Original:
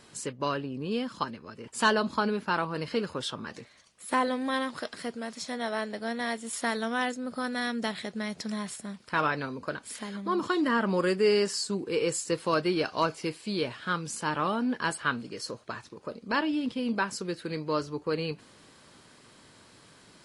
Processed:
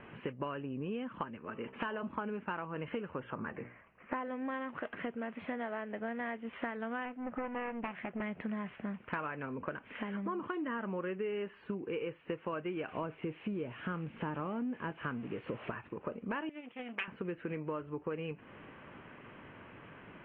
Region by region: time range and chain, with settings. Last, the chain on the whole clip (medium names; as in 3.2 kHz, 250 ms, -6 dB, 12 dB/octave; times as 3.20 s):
1.37–2.03 s: peaking EQ 95 Hz -9 dB 1.1 oct + de-hum 65.4 Hz, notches 20 + compression 2:1, threshold -28 dBFS
3.20–4.16 s: Butterworth band-stop 4.4 kHz, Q 0.78 + hum notches 60/120/180/240/300/360/420/480/540 Hz
7.05–8.22 s: tone controls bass -5 dB, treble -14 dB + band-stop 410 Hz, Q 5.1 + loudspeaker Doppler distortion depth 0.65 ms
12.88–15.72 s: zero-crossing glitches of -21.5 dBFS + tilt shelf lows +6.5 dB, about 780 Hz
16.49–17.08 s: self-modulated delay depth 0.57 ms + high-pass 1.2 kHz 6 dB/octave + gate -40 dBFS, range -7 dB
whole clip: steep low-pass 2.9 kHz 72 dB/octave; compression 8:1, threshold -40 dBFS; trim +4.5 dB